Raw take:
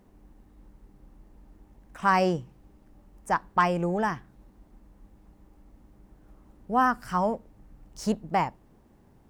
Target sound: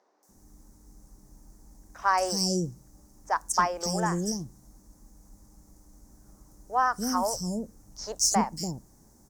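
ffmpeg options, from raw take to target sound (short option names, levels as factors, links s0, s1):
-filter_complex "[0:a]highshelf=f=4200:t=q:w=3:g=13.5,acrossover=split=440|3800[s0][s1][s2];[s2]adelay=230[s3];[s0]adelay=290[s4];[s4][s1][s3]amix=inputs=3:normalize=0" -ar 48000 -c:a libopus -b:a 256k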